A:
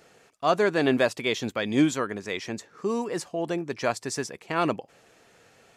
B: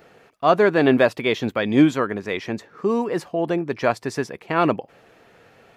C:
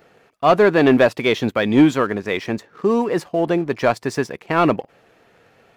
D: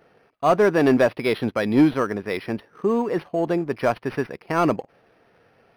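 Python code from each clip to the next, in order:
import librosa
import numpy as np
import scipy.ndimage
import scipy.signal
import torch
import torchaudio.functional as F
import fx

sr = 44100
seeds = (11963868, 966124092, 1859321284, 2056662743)

y1 = fx.peak_eq(x, sr, hz=7600.0, db=-14.0, octaves=1.5)
y1 = F.gain(torch.from_numpy(y1), 6.5).numpy()
y2 = fx.leveller(y1, sr, passes=1)
y3 = np.interp(np.arange(len(y2)), np.arange(len(y2))[::6], y2[::6])
y3 = F.gain(torch.from_numpy(y3), -3.5).numpy()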